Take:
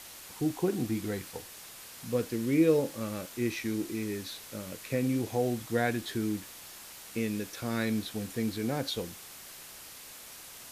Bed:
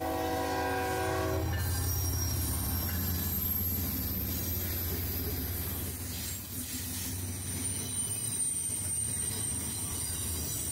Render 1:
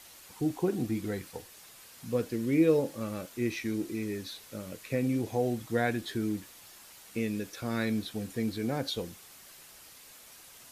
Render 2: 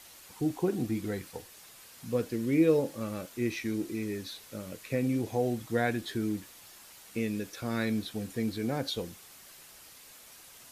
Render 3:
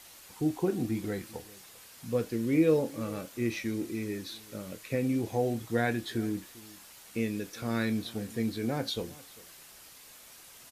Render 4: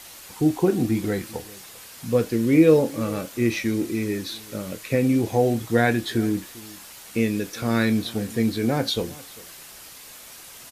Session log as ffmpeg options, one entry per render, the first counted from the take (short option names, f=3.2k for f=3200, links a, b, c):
-af "afftdn=nr=6:nf=-48"
-af anull
-filter_complex "[0:a]asplit=2[a][b];[b]adelay=26,volume=-13dB[c];[a][c]amix=inputs=2:normalize=0,asplit=2[d][e];[e]adelay=396.5,volume=-21dB,highshelf=f=4k:g=-8.92[f];[d][f]amix=inputs=2:normalize=0"
-af "volume=9dB"